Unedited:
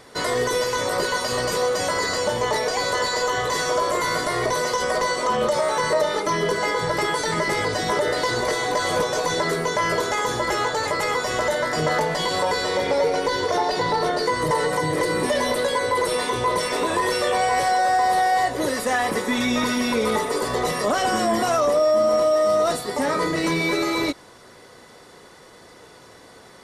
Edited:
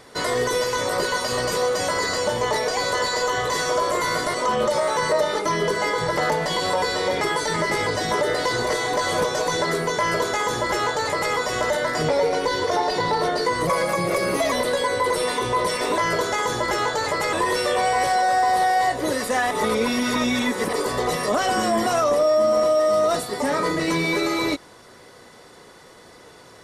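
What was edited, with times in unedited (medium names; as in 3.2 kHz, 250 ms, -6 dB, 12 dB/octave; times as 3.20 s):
4.34–5.15 s: delete
9.77–11.12 s: copy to 16.89 s
11.87–12.90 s: move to 6.99 s
14.48–15.43 s: speed 112%
19.07–20.29 s: reverse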